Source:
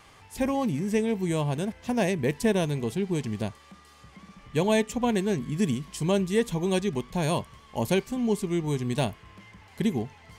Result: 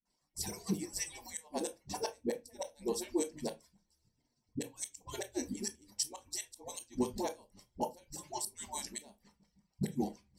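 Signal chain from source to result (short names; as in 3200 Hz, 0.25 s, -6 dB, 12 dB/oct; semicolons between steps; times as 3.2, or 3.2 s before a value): median-filter separation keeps percussive; pre-emphasis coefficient 0.8; gate -60 dBFS, range -22 dB; dynamic EQ 460 Hz, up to +3 dB, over -53 dBFS, Q 2.1; flipped gate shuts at -28 dBFS, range -29 dB; dispersion highs, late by 55 ms, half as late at 330 Hz; reverb RT60 0.20 s, pre-delay 19 ms, DRR 6.5 dB; gain +3 dB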